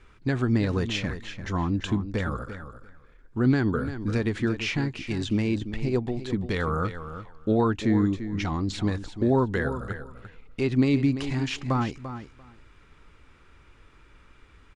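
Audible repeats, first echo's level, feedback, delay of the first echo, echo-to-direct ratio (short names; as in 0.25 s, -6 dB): 2, -11.0 dB, 15%, 0.343 s, -11.0 dB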